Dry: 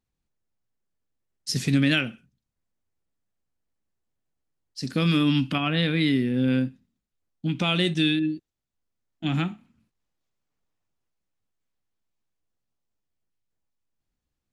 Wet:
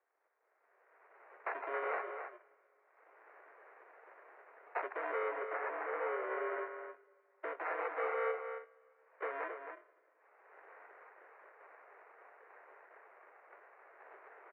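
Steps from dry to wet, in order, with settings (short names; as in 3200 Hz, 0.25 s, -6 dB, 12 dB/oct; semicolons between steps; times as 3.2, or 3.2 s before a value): FFT order left unsorted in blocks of 64 samples; recorder AGC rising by 23 dB/s; reverb removal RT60 1.1 s; compressor 6:1, threshold -35 dBFS, peak gain reduction 16.5 dB; sample-and-hold 14×; soft clip -35.5 dBFS, distortion -12 dB; 5.28–6.66 air absorption 270 m; outdoor echo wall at 46 m, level -7 dB; two-slope reverb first 0.21 s, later 3 s, from -20 dB, DRR 15 dB; mistuned SSB +140 Hz 310–2100 Hz; gain +5.5 dB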